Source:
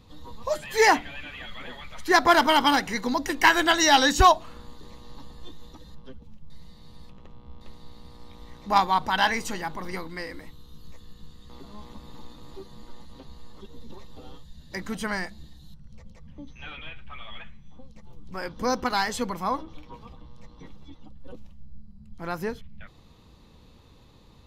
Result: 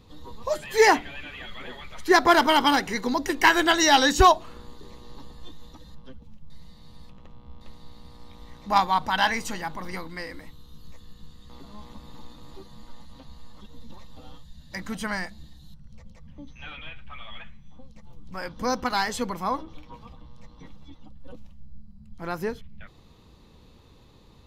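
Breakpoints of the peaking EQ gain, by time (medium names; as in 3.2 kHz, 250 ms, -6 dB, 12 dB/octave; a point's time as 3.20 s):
peaking EQ 390 Hz 0.35 oct
+6 dB
from 5.33 s -5 dB
from 12.68 s -13.5 dB
from 14.79 s -6.5 dB
from 18.95 s +0.5 dB
from 19.78 s -6.5 dB
from 22.22 s +3 dB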